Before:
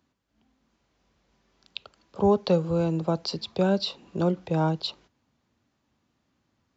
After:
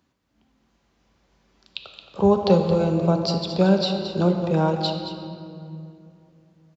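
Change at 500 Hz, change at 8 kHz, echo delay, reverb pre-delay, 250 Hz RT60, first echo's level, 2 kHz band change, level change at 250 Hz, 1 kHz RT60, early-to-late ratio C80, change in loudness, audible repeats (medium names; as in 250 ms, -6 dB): +5.0 dB, no reading, 222 ms, 5 ms, 3.4 s, -10.0 dB, +4.5 dB, +5.5 dB, 2.3 s, 5.0 dB, +5.0 dB, 1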